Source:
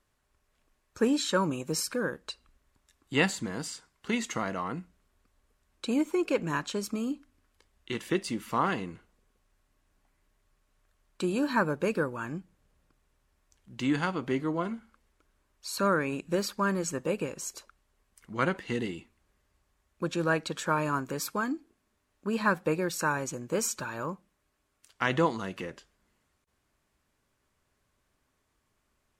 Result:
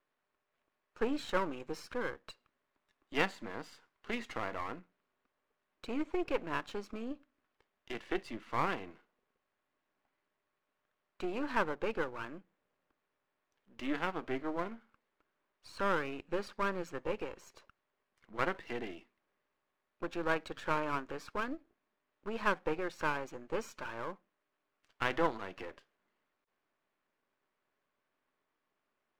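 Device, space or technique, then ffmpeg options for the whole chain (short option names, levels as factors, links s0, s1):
crystal radio: -af "highpass=300,lowpass=2700,aeval=exprs='if(lt(val(0),0),0.251*val(0),val(0))':c=same,volume=0.841"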